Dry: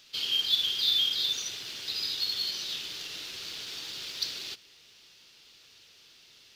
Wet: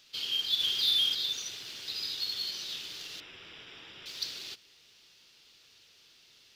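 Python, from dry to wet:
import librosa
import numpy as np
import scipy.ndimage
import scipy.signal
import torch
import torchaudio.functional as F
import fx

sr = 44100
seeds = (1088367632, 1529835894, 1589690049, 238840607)

y = fx.leveller(x, sr, passes=1, at=(0.6, 1.15))
y = fx.savgol(y, sr, points=25, at=(3.2, 4.06))
y = y * librosa.db_to_amplitude(-3.5)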